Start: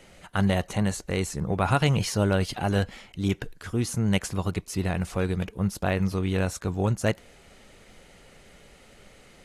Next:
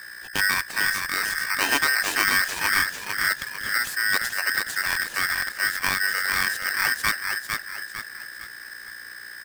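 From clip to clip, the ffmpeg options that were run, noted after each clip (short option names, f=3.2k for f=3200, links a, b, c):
-filter_complex "[0:a]asplit=6[a][b][c][d][e][f];[b]adelay=451,afreqshift=-38,volume=-5dB[g];[c]adelay=902,afreqshift=-76,volume=-12.3dB[h];[d]adelay=1353,afreqshift=-114,volume=-19.7dB[i];[e]adelay=1804,afreqshift=-152,volume=-27dB[j];[f]adelay=2255,afreqshift=-190,volume=-34.3dB[k];[a][g][h][i][j][k]amix=inputs=6:normalize=0,aeval=exprs='val(0)+0.0112*(sin(2*PI*60*n/s)+sin(2*PI*2*60*n/s)/2+sin(2*PI*3*60*n/s)/3+sin(2*PI*4*60*n/s)/4+sin(2*PI*5*60*n/s)/5)':c=same,aeval=exprs='val(0)*sgn(sin(2*PI*1700*n/s))':c=same"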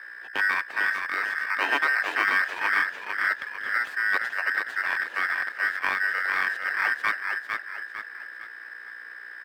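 -filter_complex "[0:a]acrossover=split=310 3000:gain=0.1 1 0.0631[a][b][c];[a][b][c]amix=inputs=3:normalize=0"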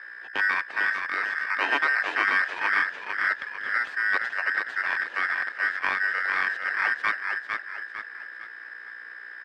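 -af "lowpass=6k"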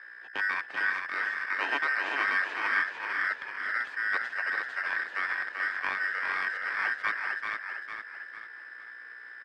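-af "aecho=1:1:387:0.562,volume=-5.5dB"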